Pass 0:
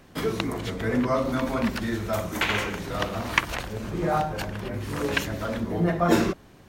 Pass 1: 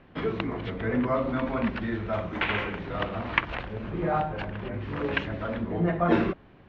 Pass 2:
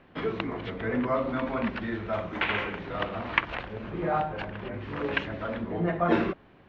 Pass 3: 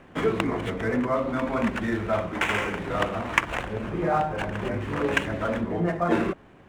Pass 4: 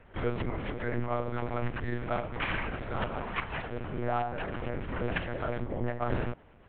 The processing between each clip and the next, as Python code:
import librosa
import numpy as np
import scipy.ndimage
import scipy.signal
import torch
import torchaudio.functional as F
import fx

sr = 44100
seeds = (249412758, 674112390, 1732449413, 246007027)

y1 = scipy.signal.sosfilt(scipy.signal.butter(4, 3100.0, 'lowpass', fs=sr, output='sos'), x)
y1 = y1 * librosa.db_to_amplitude(-2.0)
y2 = fx.low_shelf(y1, sr, hz=190.0, db=-6.0)
y3 = scipy.ndimage.median_filter(y2, 9, mode='constant')
y3 = fx.rider(y3, sr, range_db=4, speed_s=0.5)
y3 = y3 * librosa.db_to_amplitude(4.0)
y4 = 10.0 ** (-16.5 / 20.0) * np.tanh(y3 / 10.0 ** (-16.5 / 20.0))
y4 = fx.lpc_monotone(y4, sr, seeds[0], pitch_hz=120.0, order=8)
y4 = y4 * librosa.db_to_amplitude(-5.0)